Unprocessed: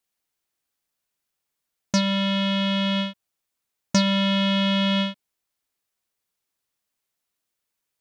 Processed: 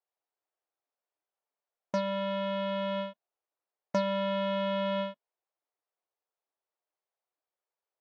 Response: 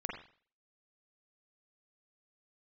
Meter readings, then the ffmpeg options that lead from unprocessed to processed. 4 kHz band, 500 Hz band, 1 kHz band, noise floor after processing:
-16.5 dB, -0.5 dB, -4.0 dB, under -85 dBFS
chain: -af "bandpass=f=680:t=q:w=1.4:csg=0" -ar 32000 -c:a libvorbis -b:a 64k

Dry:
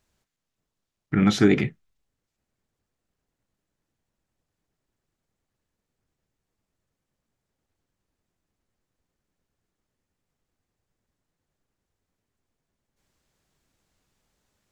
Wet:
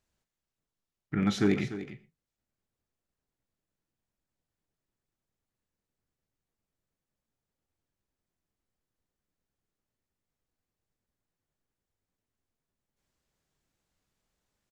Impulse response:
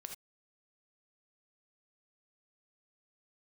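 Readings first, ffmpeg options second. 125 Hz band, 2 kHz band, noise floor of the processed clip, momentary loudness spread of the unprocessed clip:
-7.5 dB, -8.0 dB, under -85 dBFS, 10 LU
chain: -filter_complex "[0:a]asoftclip=type=hard:threshold=-9.5dB,aecho=1:1:296:0.237,asplit=2[a][b];[1:a]atrim=start_sample=2205,adelay=40[c];[b][c]afir=irnorm=-1:irlink=0,volume=-9.5dB[d];[a][d]amix=inputs=2:normalize=0,volume=-8dB"

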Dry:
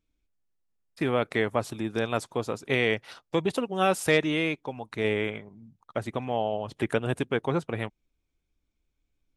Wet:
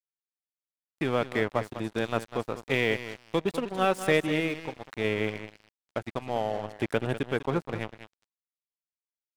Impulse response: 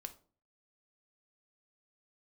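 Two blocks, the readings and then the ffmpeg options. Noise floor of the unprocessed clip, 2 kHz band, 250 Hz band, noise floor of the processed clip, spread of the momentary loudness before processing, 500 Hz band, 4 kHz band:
-80 dBFS, -1.5 dB, -1.5 dB, under -85 dBFS, 10 LU, -1.5 dB, -2.0 dB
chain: -af "aecho=1:1:198|396|594:0.316|0.0917|0.0266,aeval=exprs='sgn(val(0))*max(abs(val(0))-0.0133,0)':c=same,adynamicequalizer=threshold=0.00891:dfrequency=2300:dqfactor=0.7:tfrequency=2300:tqfactor=0.7:attack=5:release=100:ratio=0.375:range=2.5:mode=cutabove:tftype=highshelf"

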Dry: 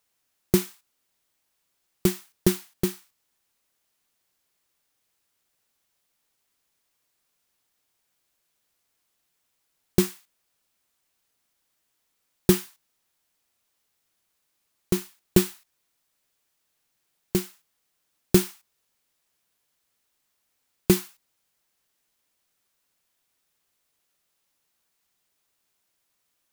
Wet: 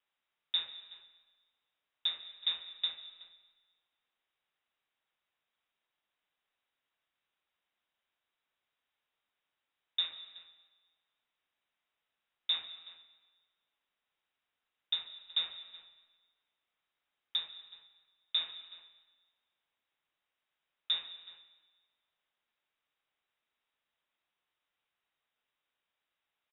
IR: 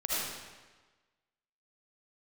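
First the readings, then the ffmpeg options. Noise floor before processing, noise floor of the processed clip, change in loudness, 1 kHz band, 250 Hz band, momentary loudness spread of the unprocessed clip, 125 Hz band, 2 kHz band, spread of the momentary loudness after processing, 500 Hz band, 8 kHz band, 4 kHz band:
-76 dBFS, under -85 dBFS, -10.0 dB, -14.0 dB, under -40 dB, 7 LU, under -40 dB, -10.5 dB, 19 LU, under -35 dB, under -40 dB, +5.5 dB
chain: -filter_complex "[0:a]acrossover=split=2900[a][b];[b]acompressor=threshold=-38dB:ratio=4:attack=1:release=60[c];[a][c]amix=inputs=2:normalize=0,alimiter=limit=-15dB:level=0:latency=1:release=61,lowpass=f=3.3k:t=q:w=0.5098,lowpass=f=3.3k:t=q:w=0.6013,lowpass=f=3.3k:t=q:w=0.9,lowpass=f=3.3k:t=q:w=2.563,afreqshift=-3900,asplit=2[d][e];[e]adelay=373.2,volume=-16dB,highshelf=f=4k:g=-8.4[f];[d][f]amix=inputs=2:normalize=0,asplit=2[g][h];[1:a]atrim=start_sample=2205,adelay=72[i];[h][i]afir=irnorm=-1:irlink=0,volume=-20dB[j];[g][j]amix=inputs=2:normalize=0,volume=-5.5dB"

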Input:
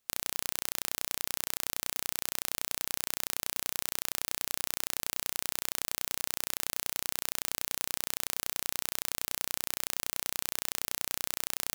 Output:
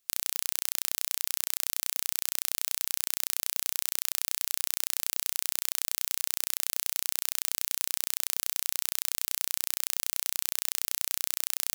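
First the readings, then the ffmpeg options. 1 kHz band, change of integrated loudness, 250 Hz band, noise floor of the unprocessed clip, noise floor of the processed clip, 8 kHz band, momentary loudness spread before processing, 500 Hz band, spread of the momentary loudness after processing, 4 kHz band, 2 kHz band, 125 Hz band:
-4.0 dB, +4.0 dB, -6.0 dB, -78 dBFS, -75 dBFS, +4.0 dB, 0 LU, -5.5 dB, 0 LU, +2.0 dB, -1.0 dB, n/a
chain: -af "highshelf=f=2.1k:g=10.5,volume=-6dB"

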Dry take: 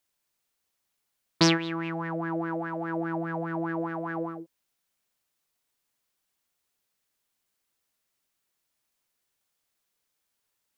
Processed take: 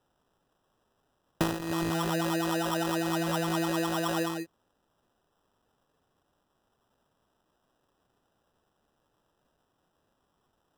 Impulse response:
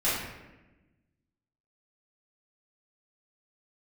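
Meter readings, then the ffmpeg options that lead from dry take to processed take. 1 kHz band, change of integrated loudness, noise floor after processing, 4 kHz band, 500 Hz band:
+1.0 dB, -0.5 dB, -76 dBFS, -2.5 dB, +0.5 dB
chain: -af "acrusher=samples=20:mix=1:aa=0.000001,acompressor=threshold=-30dB:ratio=12,volume=5dB"

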